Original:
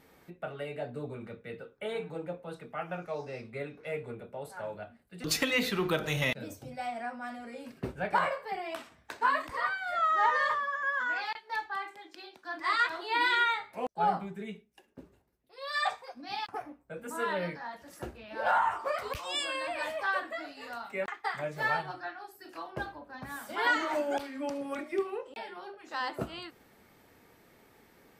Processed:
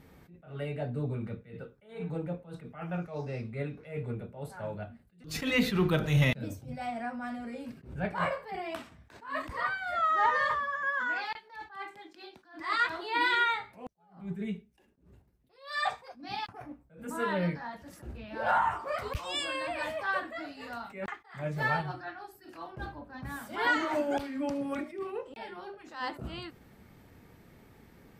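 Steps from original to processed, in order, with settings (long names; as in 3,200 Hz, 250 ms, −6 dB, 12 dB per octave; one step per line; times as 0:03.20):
bass and treble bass +12 dB, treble −2 dB
level that may rise only so fast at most 140 dB per second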